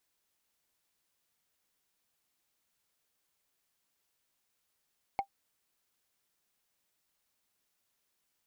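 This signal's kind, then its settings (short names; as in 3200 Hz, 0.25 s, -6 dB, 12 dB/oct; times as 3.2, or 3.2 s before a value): wood hit, lowest mode 791 Hz, decay 0.09 s, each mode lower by 10.5 dB, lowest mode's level -22 dB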